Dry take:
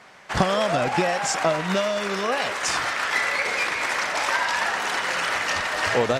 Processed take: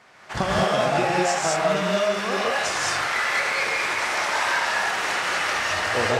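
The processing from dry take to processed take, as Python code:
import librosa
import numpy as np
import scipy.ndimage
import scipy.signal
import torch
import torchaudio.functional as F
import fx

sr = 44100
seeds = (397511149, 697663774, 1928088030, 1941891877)

y = fx.rev_gated(x, sr, seeds[0], gate_ms=240, shape='rising', drr_db=-4.5)
y = y * 10.0 ** (-5.0 / 20.0)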